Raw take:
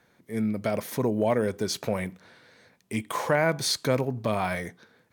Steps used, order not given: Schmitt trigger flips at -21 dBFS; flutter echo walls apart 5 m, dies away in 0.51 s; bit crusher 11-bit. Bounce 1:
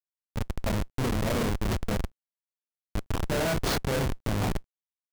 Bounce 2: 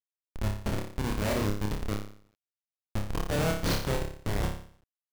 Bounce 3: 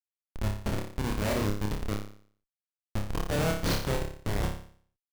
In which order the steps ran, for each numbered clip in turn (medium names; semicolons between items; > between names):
flutter echo > Schmitt trigger > bit crusher; Schmitt trigger > flutter echo > bit crusher; Schmitt trigger > bit crusher > flutter echo